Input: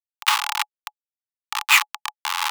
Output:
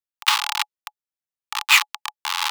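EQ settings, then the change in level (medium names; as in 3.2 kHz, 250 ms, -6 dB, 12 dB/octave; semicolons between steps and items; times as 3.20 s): dynamic bell 4.1 kHz, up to +5 dB, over -34 dBFS, Q 1.1; -1.5 dB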